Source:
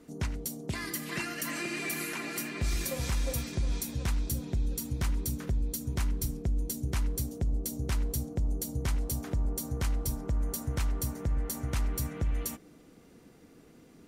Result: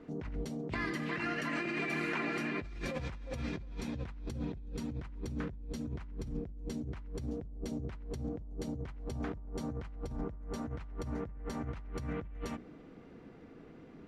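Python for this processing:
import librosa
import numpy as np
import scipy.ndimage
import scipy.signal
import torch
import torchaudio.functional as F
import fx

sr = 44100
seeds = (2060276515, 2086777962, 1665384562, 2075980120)

y = scipy.signal.sosfilt(scipy.signal.butter(2, 2400.0, 'lowpass', fs=sr, output='sos'), x)
y = fx.hum_notches(y, sr, base_hz=60, count=5)
y = fx.over_compress(y, sr, threshold_db=-38.0, ratio=-1.0)
y = F.gain(torch.from_numpy(y), -1.5).numpy()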